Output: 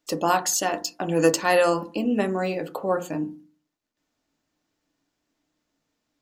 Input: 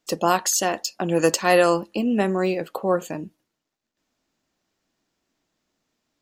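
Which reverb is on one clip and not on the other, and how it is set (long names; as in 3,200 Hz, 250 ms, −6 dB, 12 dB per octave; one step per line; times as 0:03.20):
feedback delay network reverb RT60 0.35 s, low-frequency decay 1.4×, high-frequency decay 0.25×, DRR 7 dB
level −2.5 dB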